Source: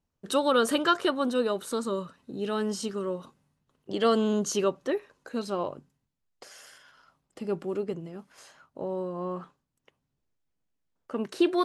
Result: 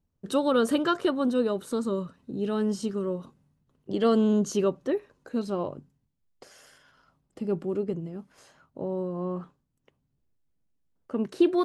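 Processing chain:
low-shelf EQ 460 Hz +11.5 dB
level −5 dB

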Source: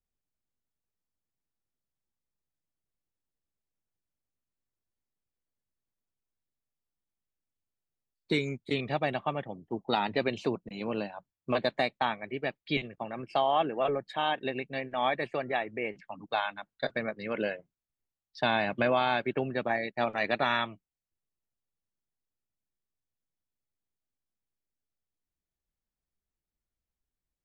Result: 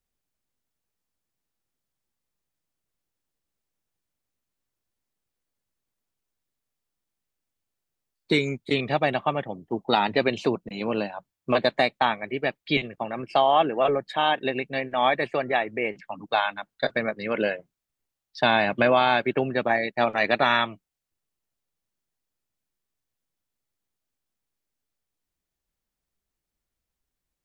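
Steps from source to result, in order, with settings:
low-shelf EQ 190 Hz −3.5 dB
level +7 dB

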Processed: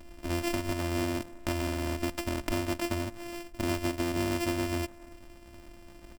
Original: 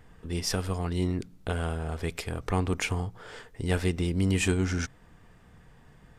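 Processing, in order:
samples sorted by size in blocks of 128 samples
comb filter 3.3 ms, depth 61%
far-end echo of a speakerphone 270 ms, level −28 dB
downward compressor 5 to 1, threshold −30 dBFS, peak gain reduction 10.5 dB
level +2.5 dB

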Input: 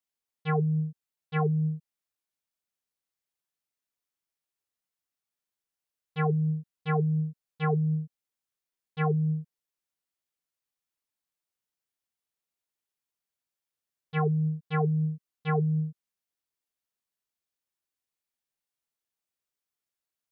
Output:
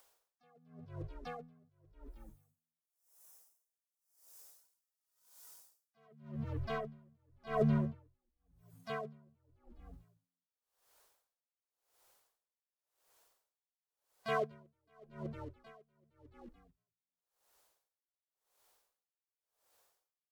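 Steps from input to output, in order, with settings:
source passing by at 0:05.06, 15 m/s, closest 7.4 metres
noise reduction from a noise print of the clip's start 14 dB
gate on every frequency bin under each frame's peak −25 dB strong
octave-band graphic EQ 125/250/500/1,000/2,000 Hz −8/−10/+11/+5/−5 dB
in parallel at +3 dB: upward compression, threshold −40 dBFS
on the sum: leveller curve on the samples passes 2
reversed playback
downward compressor 12 to 1, threshold −35 dBFS, peak gain reduction 17.5 dB
reversed playback
echo with shifted repeats 223 ms, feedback 48%, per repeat −65 Hz, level −11 dB
pitch-shifted copies added +7 semitones −2 dB
tremolo with a sine in dB 0.91 Hz, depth 38 dB
level +6.5 dB

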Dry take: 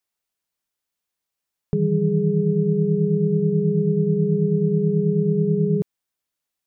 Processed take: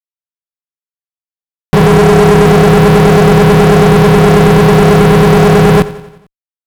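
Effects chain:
0:01.87–0:02.47: low-shelf EQ 110 Hz −11 dB
fuzz pedal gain 38 dB, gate −45 dBFS
on a send: repeating echo 89 ms, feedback 55%, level −17 dB
on the sum: level +8.5 dB

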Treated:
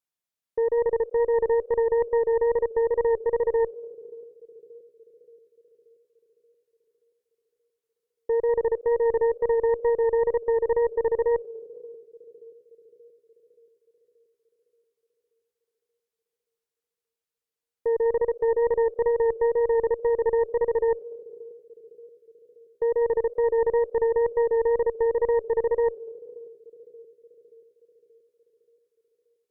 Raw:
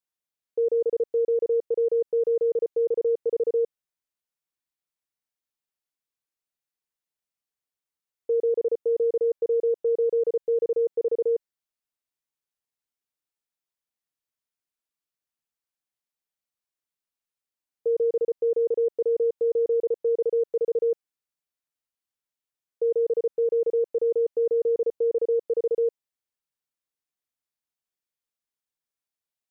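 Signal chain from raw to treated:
echo with a time of its own for lows and highs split 460 Hz, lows 579 ms, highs 197 ms, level −13.5 dB
tape wow and flutter 23 cents
harmonic generator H 2 −10 dB, 4 −20 dB, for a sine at −16.5 dBFS

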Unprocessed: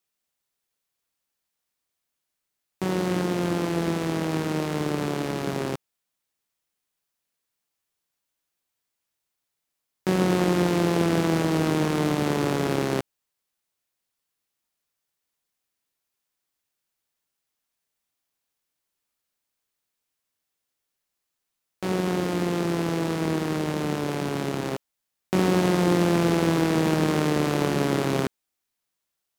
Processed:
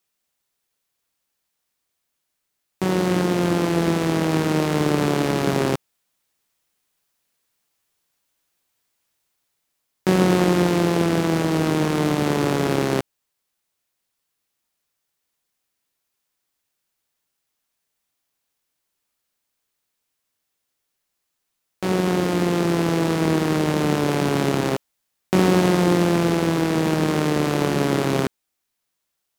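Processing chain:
speech leveller 2 s
level +4 dB

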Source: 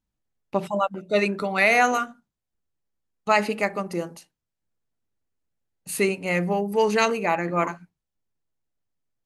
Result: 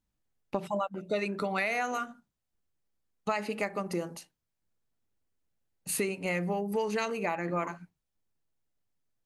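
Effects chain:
downward compressor 6 to 1, threshold −28 dBFS, peak gain reduction 13.5 dB

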